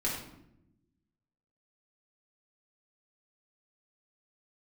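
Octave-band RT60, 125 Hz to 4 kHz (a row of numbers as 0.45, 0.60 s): 1.5, 1.4, 1.0, 0.70, 0.65, 0.50 s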